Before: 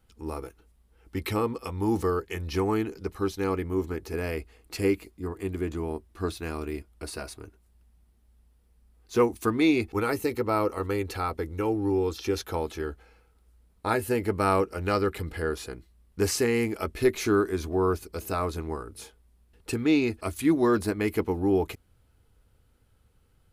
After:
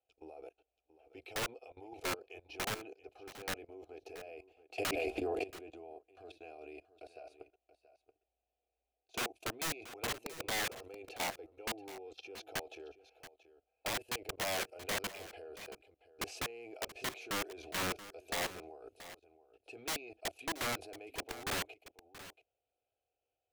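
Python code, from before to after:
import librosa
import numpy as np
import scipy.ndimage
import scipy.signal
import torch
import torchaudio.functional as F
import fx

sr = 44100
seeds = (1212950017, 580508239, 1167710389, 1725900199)

y = fx.vowel_filter(x, sr, vowel='a')
y = fx.level_steps(y, sr, step_db=20)
y = fx.fixed_phaser(y, sr, hz=470.0, stages=4)
y = (np.mod(10.0 ** (43.0 / 20.0) * y + 1.0, 2.0) - 1.0) / 10.0 ** (43.0 / 20.0)
y = y + 10.0 ** (-15.0 / 20.0) * np.pad(y, (int(679 * sr / 1000.0), 0))[:len(y)]
y = fx.env_flatten(y, sr, amount_pct=100, at=(4.78, 5.44))
y = F.gain(torch.from_numpy(y), 12.5).numpy()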